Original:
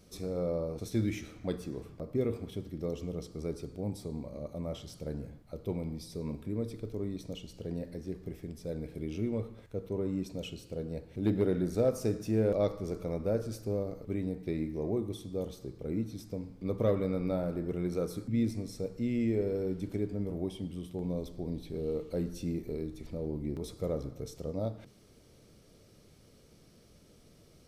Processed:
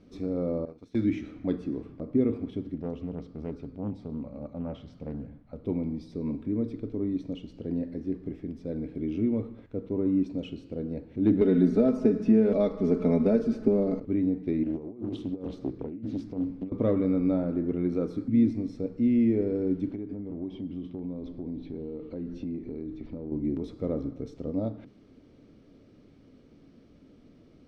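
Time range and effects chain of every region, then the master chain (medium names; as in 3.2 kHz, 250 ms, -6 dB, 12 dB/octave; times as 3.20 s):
0.65–1.05 s: gate -36 dBFS, range -15 dB + tilt shelf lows -4 dB, about 890 Hz
2.74–5.64 s: low-pass 3.3 kHz 6 dB/octave + peaking EQ 340 Hz -9 dB 0.62 oct + loudspeaker Doppler distortion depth 0.46 ms
11.41–14.00 s: comb 4.7 ms, depth 81% + three bands compressed up and down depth 100%
14.63–16.72 s: compressor with a negative ratio -38 dBFS, ratio -0.5 + loudspeaker Doppler distortion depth 0.58 ms
19.91–23.32 s: low-pass 5 kHz + compression, threshold -37 dBFS
whole clip: low-pass 3 kHz 12 dB/octave; peaking EQ 270 Hz +13 dB 0.59 oct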